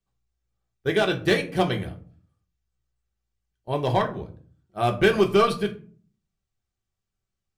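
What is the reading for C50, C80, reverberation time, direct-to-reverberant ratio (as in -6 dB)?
14.5 dB, 19.0 dB, 0.50 s, 2.0 dB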